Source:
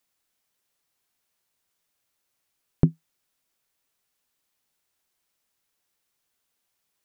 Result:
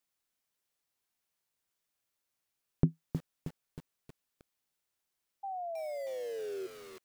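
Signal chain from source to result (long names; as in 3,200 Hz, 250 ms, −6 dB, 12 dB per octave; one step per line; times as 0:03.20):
sound drawn into the spectrogram fall, 0:05.43–0:06.67, 370–800 Hz −31 dBFS
feedback echo at a low word length 315 ms, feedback 55%, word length 6 bits, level −8 dB
level −7.5 dB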